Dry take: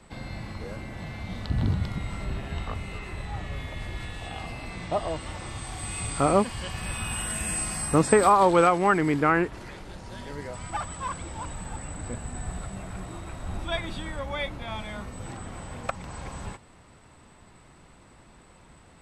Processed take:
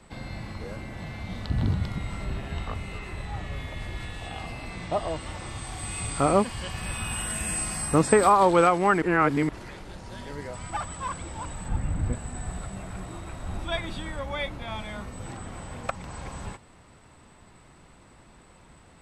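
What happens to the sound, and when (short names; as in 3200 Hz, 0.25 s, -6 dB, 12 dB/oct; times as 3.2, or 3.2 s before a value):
9.02–9.49 reverse
11.68–12.13 tone controls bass +11 dB, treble -7 dB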